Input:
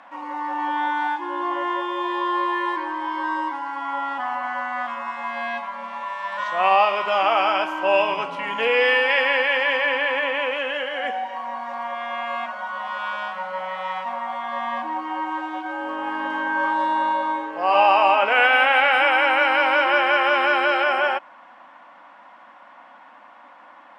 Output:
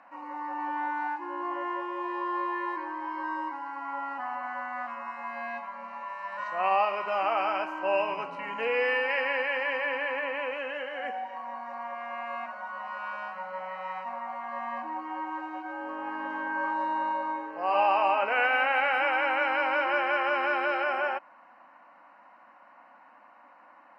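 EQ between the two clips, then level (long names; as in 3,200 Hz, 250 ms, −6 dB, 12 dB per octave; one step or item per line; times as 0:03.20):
Butterworth band-reject 3,400 Hz, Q 4.1
high-shelf EQ 4,200 Hz −8.5 dB
−7.5 dB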